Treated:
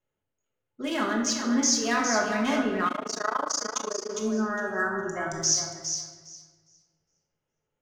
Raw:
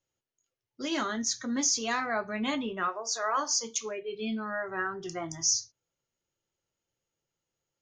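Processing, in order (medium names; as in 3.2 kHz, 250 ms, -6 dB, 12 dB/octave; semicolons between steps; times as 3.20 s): local Wiener filter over 9 samples; 3.79–5.16 s: time-frequency box 1.9–5.7 kHz -18 dB; on a send: thinning echo 409 ms, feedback 17%, high-pass 350 Hz, level -7 dB; on the sum: simulated room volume 730 m³, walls mixed, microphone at 1.4 m; 2.88–4.10 s: AM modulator 27 Hz, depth 95%; trim +2 dB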